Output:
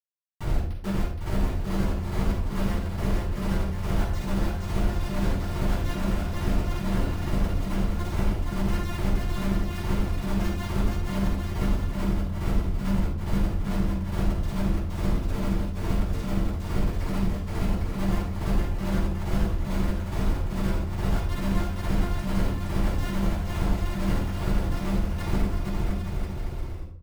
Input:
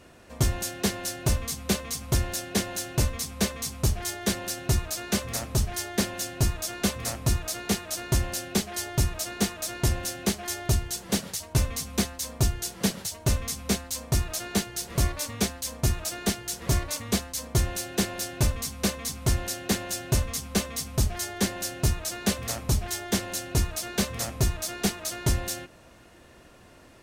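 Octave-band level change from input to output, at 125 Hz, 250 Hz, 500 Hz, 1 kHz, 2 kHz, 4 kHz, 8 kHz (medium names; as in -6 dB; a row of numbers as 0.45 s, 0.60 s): +1.5 dB, +3.0 dB, -1.0 dB, +1.0 dB, -3.0 dB, -10.0 dB, -17.5 dB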